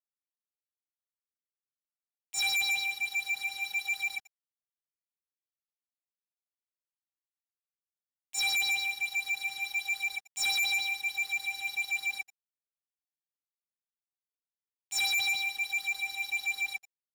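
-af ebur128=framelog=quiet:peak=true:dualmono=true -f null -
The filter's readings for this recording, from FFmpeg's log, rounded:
Integrated loudness:
  I:         -26.6 LUFS
  Threshold: -36.8 LUFS
Loudness range:
  LRA:         8.5 LU
  Threshold: -49.1 LUFS
  LRA low:   -34.8 LUFS
  LRA high:  -26.3 LUFS
True peak:
  Peak:      -24.4 dBFS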